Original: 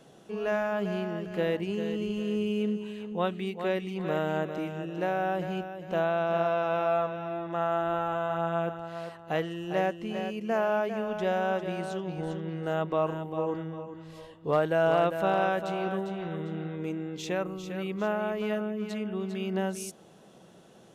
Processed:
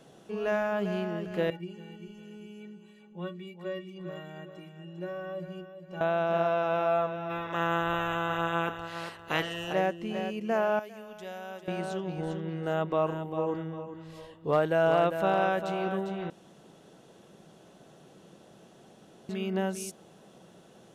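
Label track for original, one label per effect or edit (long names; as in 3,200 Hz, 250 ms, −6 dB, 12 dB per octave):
1.500000	6.010000	stiff-string resonator 170 Hz, decay 0.23 s, inharmonicity 0.03
7.290000	9.720000	ceiling on every frequency bin ceiling under each frame's peak by 18 dB
10.790000	11.680000	first-order pre-emphasis coefficient 0.8
16.300000	19.290000	fill with room tone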